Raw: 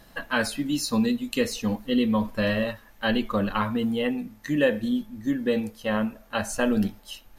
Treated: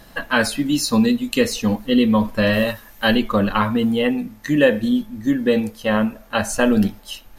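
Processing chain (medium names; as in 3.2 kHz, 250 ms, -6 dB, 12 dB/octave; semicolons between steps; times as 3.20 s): 2.53–3.15 s: treble shelf 5.7 kHz +10.5 dB; trim +7 dB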